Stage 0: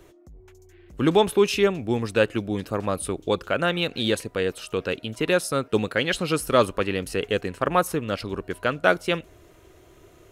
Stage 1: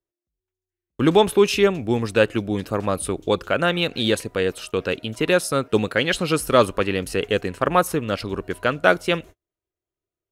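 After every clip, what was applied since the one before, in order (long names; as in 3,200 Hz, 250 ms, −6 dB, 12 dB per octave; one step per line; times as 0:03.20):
noise gate −40 dBFS, range −42 dB
level +3 dB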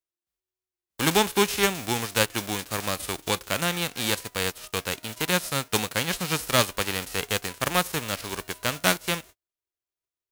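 spectral envelope flattened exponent 0.3
level −6 dB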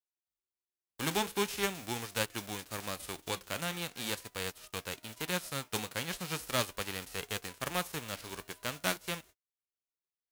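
flanger 0.43 Hz, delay 0.4 ms, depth 8 ms, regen −76%
level −6 dB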